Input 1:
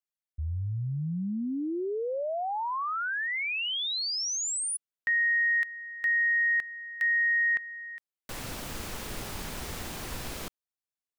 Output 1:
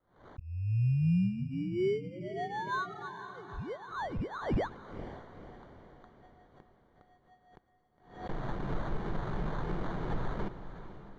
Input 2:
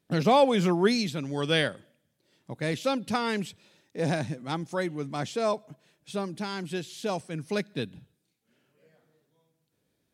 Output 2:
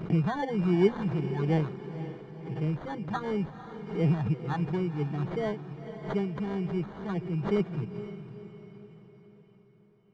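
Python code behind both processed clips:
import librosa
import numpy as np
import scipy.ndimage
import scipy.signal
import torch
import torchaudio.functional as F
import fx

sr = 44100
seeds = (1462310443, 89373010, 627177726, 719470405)

p1 = fx.peak_eq(x, sr, hz=2500.0, db=-5.5, octaves=2.0)
p2 = fx.rider(p1, sr, range_db=4, speed_s=0.5)
p3 = p1 + (p2 * 10.0 ** (-1.0 / 20.0))
p4 = fx.phaser_stages(p3, sr, stages=4, low_hz=400.0, high_hz=1900.0, hz=2.8, feedback_pct=25)
p5 = fx.fixed_phaser(p4, sr, hz=380.0, stages=8)
p6 = fx.sample_hold(p5, sr, seeds[0], rate_hz=2600.0, jitter_pct=0)
p7 = fx.spacing_loss(p6, sr, db_at_10k=35)
p8 = p7 + fx.echo_diffused(p7, sr, ms=487, feedback_pct=50, wet_db=-11.5, dry=0)
y = fx.pre_swell(p8, sr, db_per_s=110.0)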